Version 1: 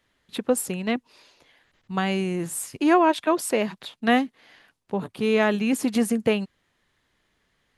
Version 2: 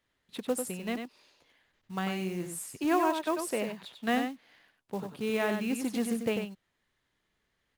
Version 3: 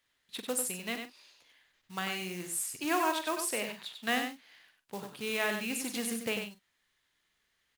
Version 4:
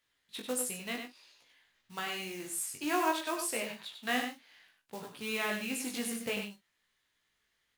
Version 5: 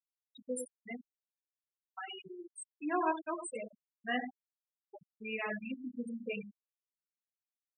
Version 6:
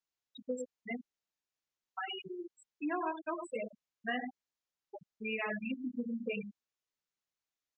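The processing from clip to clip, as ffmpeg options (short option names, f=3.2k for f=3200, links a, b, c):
-af "acrusher=bits=5:mode=log:mix=0:aa=0.000001,aecho=1:1:95:0.473,volume=-9dB"
-filter_complex "[0:a]tiltshelf=f=1.1k:g=-6.5,asplit=2[a][b];[b]adelay=44,volume=-11.5dB[c];[a][c]amix=inputs=2:normalize=0,volume=-1dB"
-af "flanger=delay=17.5:depth=3.1:speed=0.57,volume=1.5dB"
-af "afftfilt=real='re*gte(hypot(re,im),0.0631)':imag='im*gte(hypot(re,im),0.0631)':win_size=1024:overlap=0.75,volume=-1.5dB"
-af "acompressor=threshold=-37dB:ratio=6,aresample=16000,aresample=44100,volume=4.5dB"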